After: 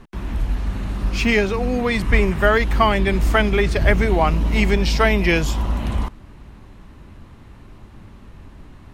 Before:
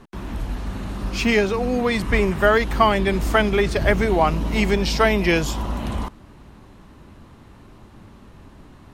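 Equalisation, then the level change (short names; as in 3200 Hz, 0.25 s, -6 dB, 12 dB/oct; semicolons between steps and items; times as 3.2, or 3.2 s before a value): low shelf 100 Hz +9 dB; bell 2200 Hz +3.5 dB 1 oct; -1.0 dB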